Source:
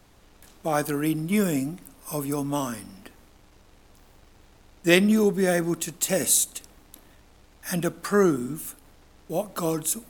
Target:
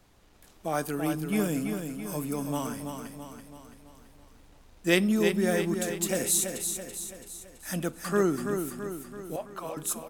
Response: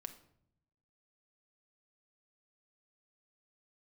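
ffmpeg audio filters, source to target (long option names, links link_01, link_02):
-filter_complex "[0:a]asettb=1/sr,asplit=3[link_01][link_02][link_03];[link_01]atrim=end=9.364[link_04];[link_02]atrim=start=9.36:end=9.77,asetpts=PTS-STARTPTS,afade=type=in:duration=0.004:curve=qsin,afade=type=out:start_time=0.406:duration=0.004:curve=qsin,acrossover=split=530 3300:gain=0.0794 1 0.158[link_05][link_06][link_07];[link_05][link_06][link_07]amix=inputs=3:normalize=0[link_08];[link_03]atrim=start=9.766[link_09];[link_04][link_08]acrossfade=duration=0.004:curve1=hsin:curve2=qsin[link_10];[link_10][link_09]acrossfade=duration=0.004:curve1=qsin:curve2=hsin,aecho=1:1:332|664|996|1328|1660|1992:0.473|0.246|0.128|0.0665|0.0346|0.018,volume=-5dB"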